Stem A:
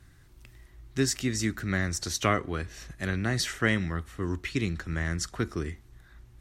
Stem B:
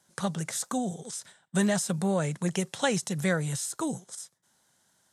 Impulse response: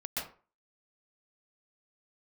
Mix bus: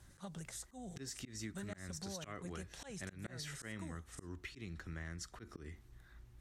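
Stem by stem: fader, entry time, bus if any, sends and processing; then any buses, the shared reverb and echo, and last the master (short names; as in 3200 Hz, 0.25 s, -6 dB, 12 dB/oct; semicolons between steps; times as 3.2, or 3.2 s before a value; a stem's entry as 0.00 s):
-6.5 dB, 0.00 s, no send, dry
-1.5 dB, 0.00 s, no send, auto duck -10 dB, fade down 0.45 s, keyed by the first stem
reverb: off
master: auto swell 0.207 s; compressor 3:1, threshold -45 dBFS, peak gain reduction 11.5 dB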